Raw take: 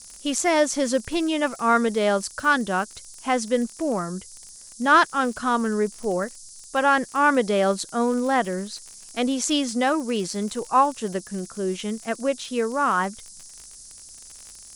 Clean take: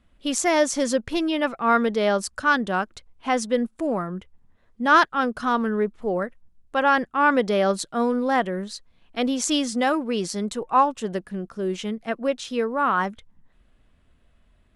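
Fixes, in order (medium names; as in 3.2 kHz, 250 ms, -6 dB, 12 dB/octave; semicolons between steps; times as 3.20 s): de-click; noise print and reduce 14 dB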